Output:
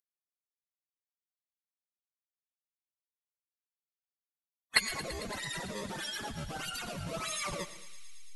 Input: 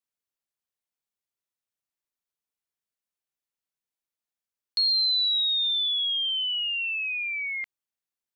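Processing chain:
camcorder AGC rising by 6.1 dB per second
low-pass filter 1,900 Hz 12 dB per octave
spectral tilt +2 dB per octave
mains-hum notches 50/100/150 Hz
pitch-shifted copies added −12 semitones −4 dB, +7 semitones −17 dB
slack as between gear wheels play −32.5 dBFS
sample-and-hold swept by an LFO 18×, swing 160% 1.6 Hz
phase-vocoder pitch shift with formants kept −11 semitones
flanger 1.9 Hz, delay 4.3 ms, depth 2.2 ms, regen +42%
feedback echo with a high-pass in the loop 112 ms, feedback 84%, high-pass 1,200 Hz, level −13.5 dB
convolution reverb RT60 0.50 s, pre-delay 70 ms, DRR 14.5 dB

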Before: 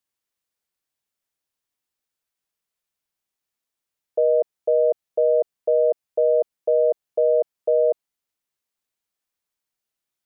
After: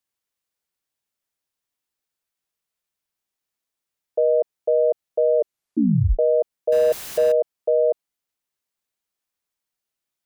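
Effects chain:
0:05.38: tape stop 0.81 s
0:06.72–0:07.32: converter with a step at zero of −28 dBFS

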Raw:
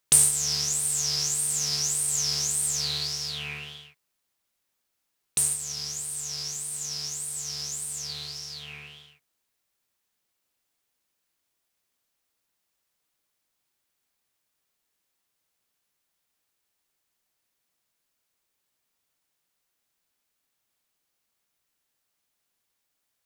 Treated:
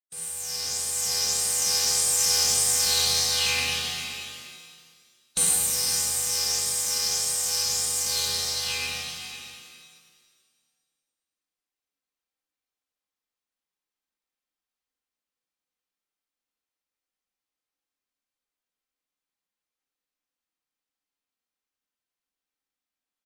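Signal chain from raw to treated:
fade in at the beginning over 2.06 s
parametric band 97 Hz −4.5 dB 1 octave
comb filter 4.3 ms, depth 31%
noise gate with hold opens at −34 dBFS
high-shelf EQ 7,600 Hz −8 dB
in parallel at −2.5 dB: speech leveller within 4 dB
on the sum: phase-vocoder pitch shift with formants kept +2 semitones
on a send: single-tap delay 495 ms −10 dB
on the sum: regular buffer underruns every 0.20 s, samples 512, zero
reverb with rising layers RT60 1.8 s, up +7 semitones, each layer −8 dB, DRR −6.5 dB
level −3 dB

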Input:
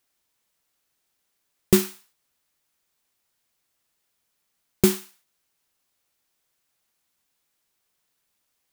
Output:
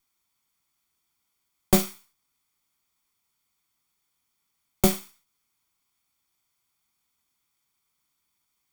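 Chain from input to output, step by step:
lower of the sound and its delayed copy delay 0.88 ms

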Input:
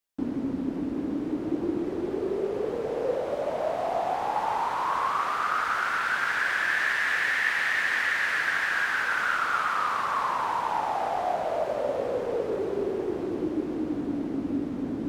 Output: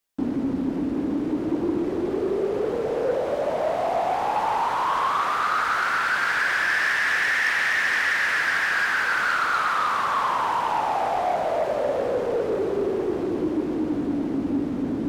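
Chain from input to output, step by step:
soft clipping −21 dBFS, distortion −18 dB
level +5.5 dB

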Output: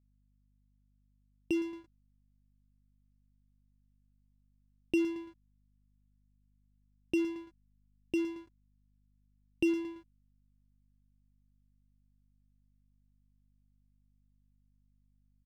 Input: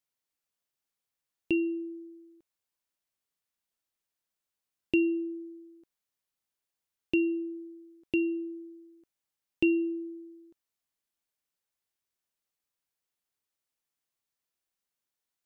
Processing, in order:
on a send: repeating echo 112 ms, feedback 39%, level −14 dB
on the sum: slack as between gear wheels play −30 dBFS
mains hum 50 Hz, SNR 29 dB
level −3.5 dB

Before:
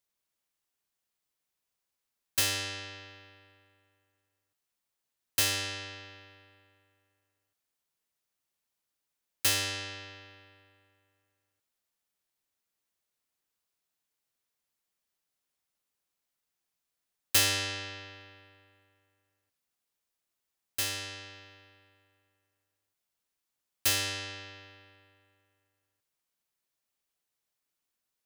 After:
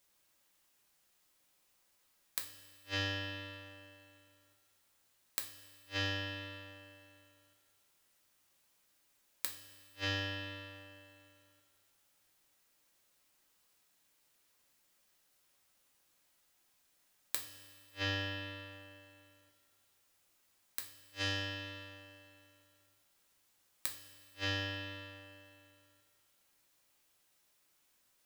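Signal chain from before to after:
soft clipping −23 dBFS, distortion −12 dB
gate with flip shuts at −33 dBFS, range −40 dB
coupled-rooms reverb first 0.34 s, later 2.6 s, from −17 dB, DRR 1.5 dB
level +9.5 dB

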